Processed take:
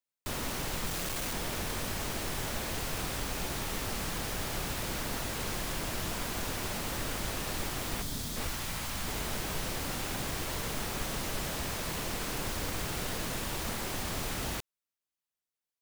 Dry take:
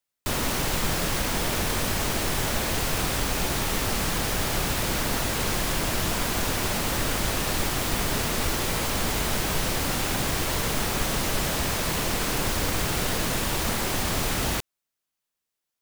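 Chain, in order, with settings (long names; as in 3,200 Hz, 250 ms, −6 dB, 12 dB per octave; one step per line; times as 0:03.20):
0:00.86–0:01.33: sign of each sample alone
0:08.02–0:08.36: gain on a spectral selection 320–3,100 Hz −8 dB
0:08.47–0:09.08: parametric band 430 Hz −9 dB 1.1 octaves
level −9 dB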